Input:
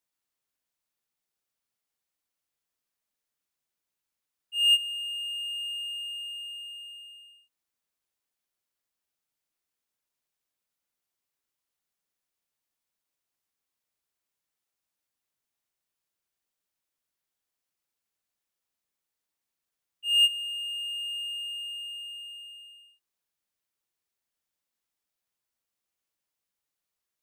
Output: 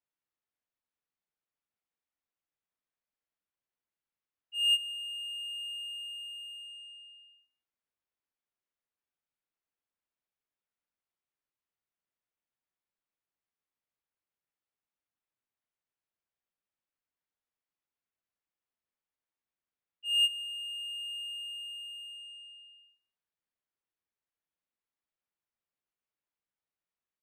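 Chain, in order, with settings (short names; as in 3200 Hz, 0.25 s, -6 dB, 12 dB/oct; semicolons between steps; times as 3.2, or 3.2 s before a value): low-pass opened by the level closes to 2700 Hz, open at -36.5 dBFS; on a send: echo 0.172 s -23.5 dB; on the sum: gain -5 dB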